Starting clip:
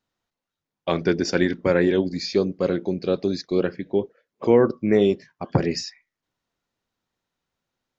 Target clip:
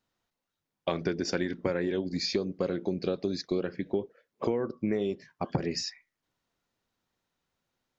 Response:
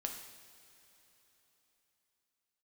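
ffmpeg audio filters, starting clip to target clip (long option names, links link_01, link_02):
-af "acompressor=threshold=-25dB:ratio=16"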